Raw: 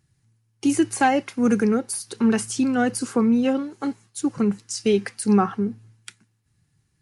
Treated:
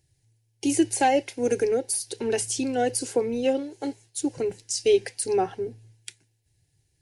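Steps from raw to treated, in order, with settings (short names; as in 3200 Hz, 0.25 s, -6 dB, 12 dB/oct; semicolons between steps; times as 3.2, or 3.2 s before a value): fixed phaser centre 500 Hz, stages 4; gain +2 dB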